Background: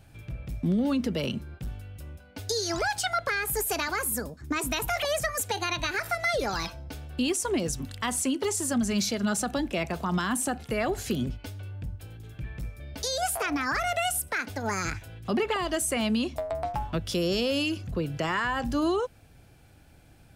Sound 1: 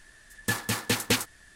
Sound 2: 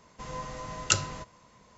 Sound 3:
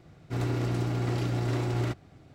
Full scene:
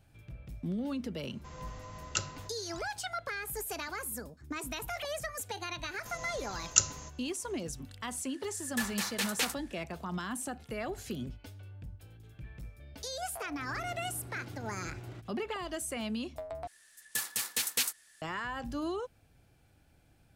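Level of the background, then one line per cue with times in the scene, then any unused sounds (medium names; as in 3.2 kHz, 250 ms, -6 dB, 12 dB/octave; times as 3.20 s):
background -9.5 dB
1.25 s: add 2 -8.5 dB
5.86 s: add 2 -9 dB + resonant low-pass 6.6 kHz, resonance Q 5.7
8.29 s: add 1 -5.5 dB + high-pass 600 Hz
13.28 s: add 3 -17.5 dB
16.67 s: replace with 1 -12.5 dB + tilt EQ +4 dB/octave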